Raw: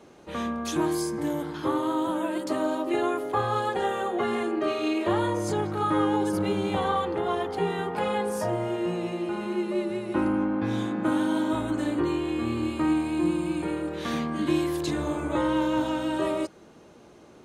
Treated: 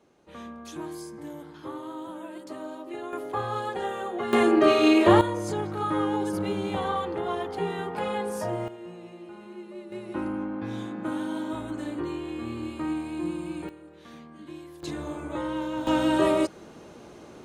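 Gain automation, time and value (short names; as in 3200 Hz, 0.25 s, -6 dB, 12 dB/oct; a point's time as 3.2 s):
-11 dB
from 3.13 s -4 dB
from 4.33 s +8 dB
from 5.21 s -2.5 dB
from 8.68 s -13.5 dB
from 9.92 s -6 dB
from 13.69 s -17.5 dB
from 14.83 s -6 dB
from 15.87 s +5 dB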